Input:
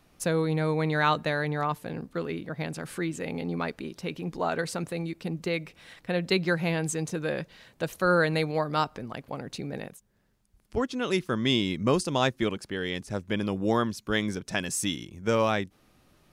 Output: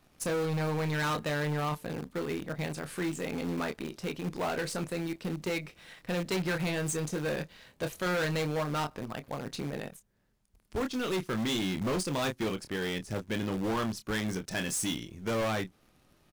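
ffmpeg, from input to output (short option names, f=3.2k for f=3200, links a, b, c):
-filter_complex "[0:a]asplit=2[a][b];[b]adelay=27,volume=-9dB[c];[a][c]amix=inputs=2:normalize=0,asplit=2[d][e];[e]acrusher=bits=6:dc=4:mix=0:aa=0.000001,volume=-7dB[f];[d][f]amix=inputs=2:normalize=0,asoftclip=type=hard:threshold=-23.5dB,volume=-4dB"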